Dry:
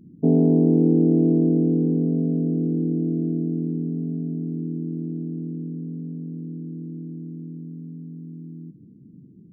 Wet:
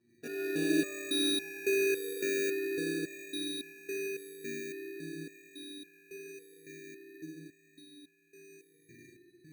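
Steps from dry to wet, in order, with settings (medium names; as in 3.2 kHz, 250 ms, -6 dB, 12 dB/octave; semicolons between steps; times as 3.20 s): high-pass 50 Hz; resonant low shelf 290 Hz -6.5 dB, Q 3; level rider gain up to 8.5 dB; flange 0.31 Hz, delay 5.3 ms, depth 9.9 ms, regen +86%; spring tank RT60 3 s, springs 38/51 ms, chirp 70 ms, DRR -8.5 dB; sample-and-hold 21×; resonator arpeggio 3.6 Hz 120–810 Hz; trim -3 dB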